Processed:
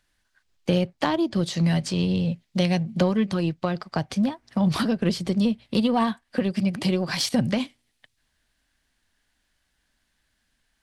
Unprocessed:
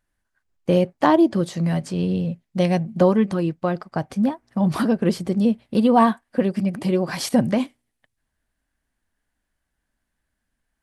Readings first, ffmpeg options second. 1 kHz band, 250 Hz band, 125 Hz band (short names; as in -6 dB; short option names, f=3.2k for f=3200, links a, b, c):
-7.0 dB, -3.5 dB, -1.0 dB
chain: -filter_complex "[0:a]equalizer=f=4k:t=o:w=2:g=11.5,acrossover=split=150[a][b];[b]acompressor=threshold=-32dB:ratio=2.5[c];[a][c]amix=inputs=2:normalize=0,aeval=exprs='0.251*(cos(1*acos(clip(val(0)/0.251,-1,1)))-cos(1*PI/2))+0.00708*(cos(7*acos(clip(val(0)/0.251,-1,1)))-cos(7*PI/2))':c=same,volume=4.5dB"